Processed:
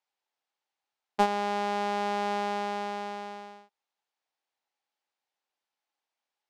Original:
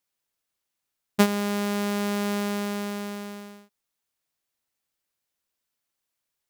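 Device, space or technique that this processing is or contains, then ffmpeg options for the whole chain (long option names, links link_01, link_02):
intercom: -af "highpass=330,lowpass=4600,equalizer=frequency=820:width_type=o:width=0.36:gain=10.5,asoftclip=type=tanh:threshold=-8dB,volume=-2dB"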